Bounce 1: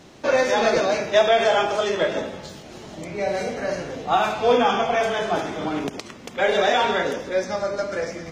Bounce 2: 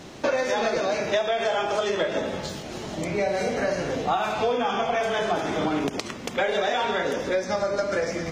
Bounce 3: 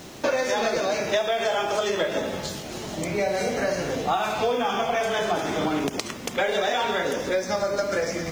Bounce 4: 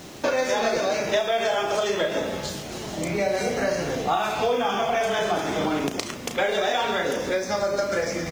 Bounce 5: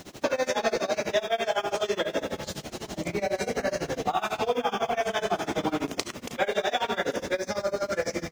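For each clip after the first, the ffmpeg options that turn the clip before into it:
-af "acompressor=threshold=-26dB:ratio=10,volume=5dB"
-af "crystalizer=i=1:c=0,acrusher=bits=9:dc=4:mix=0:aa=0.000001"
-filter_complex "[0:a]asplit=2[a][b];[b]adelay=35,volume=-9dB[c];[a][c]amix=inputs=2:normalize=0"
-af "tremolo=f=12:d=0.93"

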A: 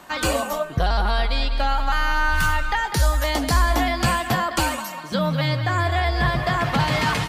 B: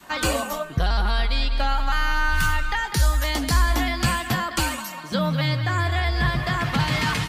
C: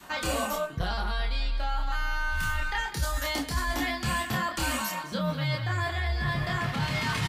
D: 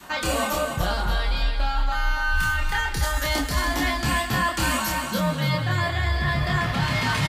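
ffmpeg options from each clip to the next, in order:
-af "adynamicequalizer=threshold=0.0126:dfrequency=640:dqfactor=0.94:tfrequency=640:tqfactor=0.94:attack=5:release=100:ratio=0.375:range=3.5:mode=cutabove:tftype=bell"
-filter_complex "[0:a]asplit=2[a][b];[b]adelay=28,volume=-2.5dB[c];[a][c]amix=inputs=2:normalize=0,areverse,acompressor=threshold=-26dB:ratio=6,areverse"
-af "aecho=1:1:288|576|864|1152:0.473|0.18|0.0683|0.026,volume=4.5dB"

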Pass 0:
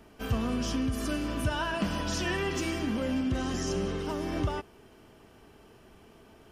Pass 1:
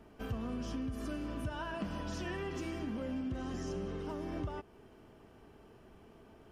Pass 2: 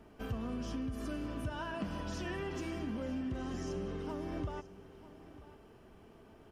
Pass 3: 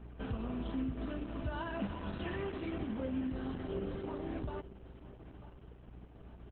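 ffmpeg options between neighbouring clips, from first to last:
-af "highshelf=f=2.1k:g=-8.5,acompressor=threshold=-38dB:ratio=2,volume=-2dB"
-af "aecho=1:1:943:0.15"
-filter_complex "[0:a]aeval=exprs='val(0)+0.00282*(sin(2*PI*60*n/s)+sin(2*PI*2*60*n/s)/2+sin(2*PI*3*60*n/s)/3+sin(2*PI*4*60*n/s)/4+sin(2*PI*5*60*n/s)/5)':c=same,asplit=2[a][b];[b]adelay=15,volume=-11.5dB[c];[a][c]amix=inputs=2:normalize=0,volume=1dB" -ar 48000 -c:a libopus -b:a 8k

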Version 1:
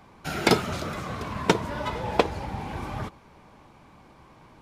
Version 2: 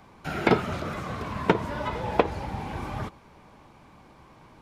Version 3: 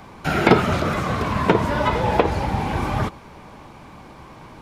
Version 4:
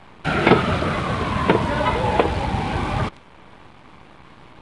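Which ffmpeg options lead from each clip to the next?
-filter_complex "[0:a]acrossover=split=3000[a][b];[b]acompressor=threshold=-49dB:ratio=4:attack=1:release=60[c];[a][c]amix=inputs=2:normalize=0"
-af "alimiter=level_in=11.5dB:limit=-1dB:release=50:level=0:latency=1,volume=-1dB"
-af "acrusher=bits=6:dc=4:mix=0:aa=0.000001,highshelf=f=4.6k:t=q:w=1.5:g=-8" -ar 22050 -c:a aac -b:a 48k

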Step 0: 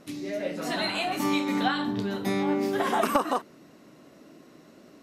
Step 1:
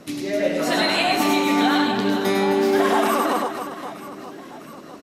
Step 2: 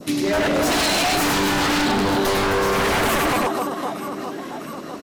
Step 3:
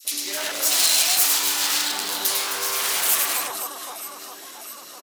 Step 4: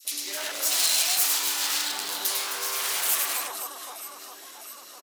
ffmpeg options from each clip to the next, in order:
-filter_complex "[0:a]acrossover=split=190[a][b];[a]acompressor=threshold=-50dB:ratio=6[c];[c][b]amix=inputs=2:normalize=0,alimiter=limit=-19.5dB:level=0:latency=1:release=95,aecho=1:1:100|260|516|925.6|1581:0.631|0.398|0.251|0.158|0.1,volume=8dB"
-af "acontrast=79,adynamicequalizer=threshold=0.0251:dfrequency=2000:dqfactor=0.93:tfrequency=2000:tqfactor=0.93:attack=5:release=100:ratio=0.375:range=2.5:mode=cutabove:tftype=bell,aeval=exprs='0.188*(abs(mod(val(0)/0.188+3,4)-2)-1)':c=same"
-filter_complex "[0:a]aderivative,acrossover=split=200|2000[a][b][c];[b]adelay=40[d];[a]adelay=180[e];[e][d][c]amix=inputs=3:normalize=0,volume=8dB"
-af "highpass=f=290:p=1,volume=-4.5dB"

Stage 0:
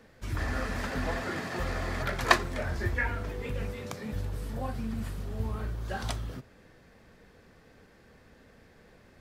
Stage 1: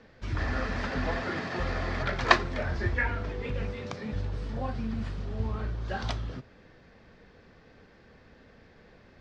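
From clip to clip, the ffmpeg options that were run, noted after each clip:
-af "lowpass=f=5.5k:w=0.5412,lowpass=f=5.5k:w=1.3066,volume=1.5dB"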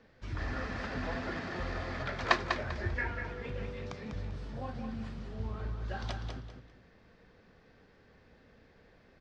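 -af "aecho=1:1:197|394|591:0.473|0.128|0.0345,volume=-6.5dB"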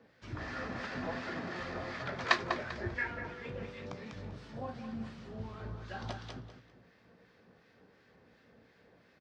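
-filter_complex "[0:a]highpass=110,asplit=2[a][b];[b]adelay=17,volume=-12dB[c];[a][c]amix=inputs=2:normalize=0,acrossover=split=1200[d][e];[d]aeval=exprs='val(0)*(1-0.5/2+0.5/2*cos(2*PI*2.8*n/s))':c=same[f];[e]aeval=exprs='val(0)*(1-0.5/2-0.5/2*cos(2*PI*2.8*n/s))':c=same[g];[f][g]amix=inputs=2:normalize=0,volume=1dB"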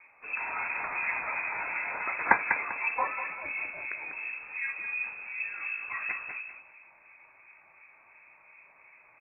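-af "lowpass=f=2.3k:t=q:w=0.5098,lowpass=f=2.3k:t=q:w=0.6013,lowpass=f=2.3k:t=q:w=0.9,lowpass=f=2.3k:t=q:w=2.563,afreqshift=-2700,volume=6.5dB"

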